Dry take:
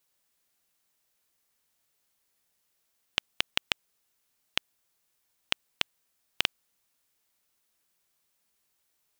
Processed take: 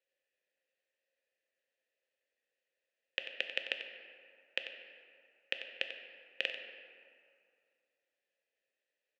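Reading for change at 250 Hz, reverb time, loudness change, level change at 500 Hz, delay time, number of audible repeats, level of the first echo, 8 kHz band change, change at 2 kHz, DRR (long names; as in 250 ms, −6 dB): −12.5 dB, 2.4 s, −7.0 dB, +1.0 dB, 92 ms, 1, −11.5 dB, below −20 dB, −3.0 dB, 4.5 dB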